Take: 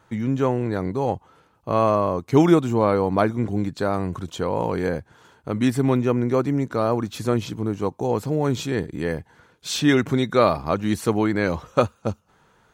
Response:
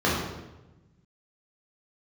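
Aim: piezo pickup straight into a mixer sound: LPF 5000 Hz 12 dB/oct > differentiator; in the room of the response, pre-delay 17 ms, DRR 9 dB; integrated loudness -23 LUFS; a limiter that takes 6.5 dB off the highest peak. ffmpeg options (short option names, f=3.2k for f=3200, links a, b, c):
-filter_complex "[0:a]alimiter=limit=-10.5dB:level=0:latency=1,asplit=2[a][b];[1:a]atrim=start_sample=2205,adelay=17[c];[b][c]afir=irnorm=-1:irlink=0,volume=-26dB[d];[a][d]amix=inputs=2:normalize=0,lowpass=5k,aderivative,volume=20dB"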